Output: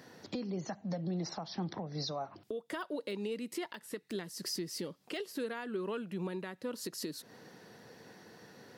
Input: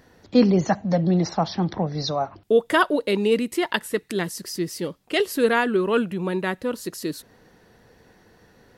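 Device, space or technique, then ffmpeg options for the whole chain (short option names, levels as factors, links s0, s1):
broadcast voice chain: -af "highpass=f=120:w=0.5412,highpass=f=120:w=1.3066,deesser=0.6,acompressor=threshold=0.02:ratio=5,equalizer=f=5000:t=o:w=0.69:g=4.5,alimiter=level_in=1.58:limit=0.0631:level=0:latency=1:release=323,volume=0.631"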